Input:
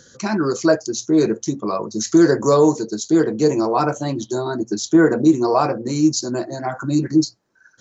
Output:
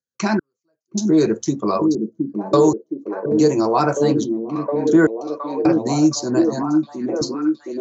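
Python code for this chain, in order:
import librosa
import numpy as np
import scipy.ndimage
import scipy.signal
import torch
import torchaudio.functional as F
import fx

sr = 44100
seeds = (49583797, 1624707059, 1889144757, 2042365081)

p1 = fx.step_gate(x, sr, bpm=77, pattern='.x...xxxxx..', floor_db=-60.0, edge_ms=4.5)
p2 = p1 + fx.echo_stepped(p1, sr, ms=716, hz=240.0, octaves=0.7, feedback_pct=70, wet_db=-2.0, dry=0)
p3 = fx.band_squash(p2, sr, depth_pct=40)
y = p3 * librosa.db_to_amplitude(1.0)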